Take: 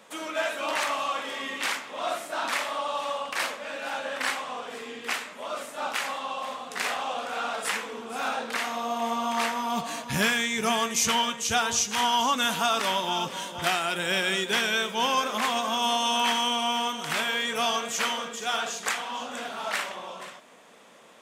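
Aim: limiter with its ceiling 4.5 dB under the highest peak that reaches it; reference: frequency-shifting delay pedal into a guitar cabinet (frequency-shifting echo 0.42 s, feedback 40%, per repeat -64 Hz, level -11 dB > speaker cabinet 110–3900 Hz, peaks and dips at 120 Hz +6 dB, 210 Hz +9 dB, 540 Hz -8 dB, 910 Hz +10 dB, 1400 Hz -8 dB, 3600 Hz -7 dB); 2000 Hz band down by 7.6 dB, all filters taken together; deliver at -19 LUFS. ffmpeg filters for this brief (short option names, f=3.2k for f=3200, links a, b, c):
-filter_complex "[0:a]equalizer=f=2k:t=o:g=-7,alimiter=limit=-17.5dB:level=0:latency=1,asplit=5[a][b][c][d][e];[b]adelay=420,afreqshift=-64,volume=-11dB[f];[c]adelay=840,afreqshift=-128,volume=-19dB[g];[d]adelay=1260,afreqshift=-192,volume=-26.9dB[h];[e]adelay=1680,afreqshift=-256,volume=-34.9dB[i];[a][f][g][h][i]amix=inputs=5:normalize=0,highpass=110,equalizer=f=120:t=q:w=4:g=6,equalizer=f=210:t=q:w=4:g=9,equalizer=f=540:t=q:w=4:g=-8,equalizer=f=910:t=q:w=4:g=10,equalizer=f=1.4k:t=q:w=4:g=-8,equalizer=f=3.6k:t=q:w=4:g=-7,lowpass=f=3.9k:w=0.5412,lowpass=f=3.9k:w=1.3066,volume=9dB"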